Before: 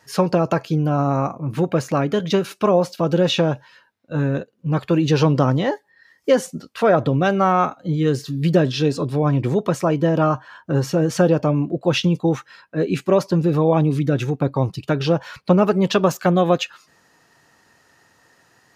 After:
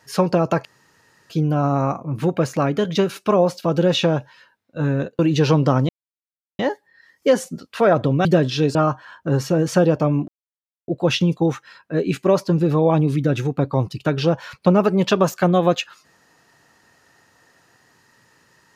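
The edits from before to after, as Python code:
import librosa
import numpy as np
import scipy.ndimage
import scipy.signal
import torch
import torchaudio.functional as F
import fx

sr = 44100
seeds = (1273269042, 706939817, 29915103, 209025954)

y = fx.edit(x, sr, fx.insert_room_tone(at_s=0.65, length_s=0.65),
    fx.cut(start_s=4.54, length_s=0.37),
    fx.insert_silence(at_s=5.61, length_s=0.7),
    fx.cut(start_s=7.27, length_s=1.2),
    fx.cut(start_s=8.97, length_s=1.21),
    fx.insert_silence(at_s=11.71, length_s=0.6), tone=tone)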